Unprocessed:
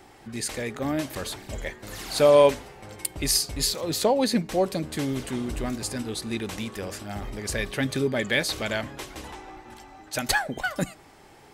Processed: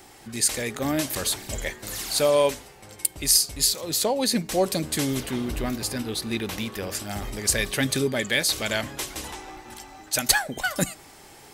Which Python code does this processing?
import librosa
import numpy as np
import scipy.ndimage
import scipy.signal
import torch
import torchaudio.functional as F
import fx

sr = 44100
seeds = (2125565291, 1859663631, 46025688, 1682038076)

y = fx.high_shelf(x, sr, hz=4000.0, db=12.0)
y = fx.rider(y, sr, range_db=3, speed_s=0.5)
y = fx.peak_eq(y, sr, hz=8100.0, db=-10.5, octaves=1.2, at=(5.2, 6.95))
y = y * librosa.db_to_amplitude(-1.5)